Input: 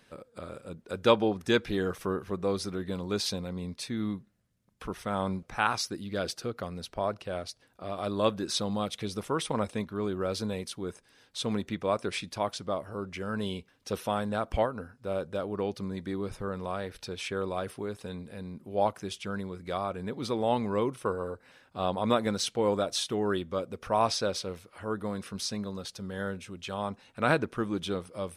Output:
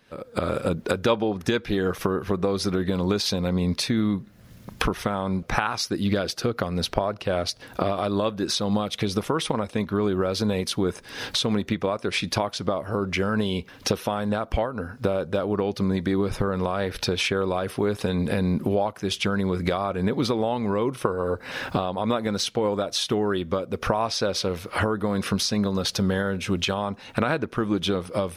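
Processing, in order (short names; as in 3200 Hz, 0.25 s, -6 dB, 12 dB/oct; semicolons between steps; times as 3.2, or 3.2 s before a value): recorder AGC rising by 54 dB/s; bell 8400 Hz -7 dB 0.6 oct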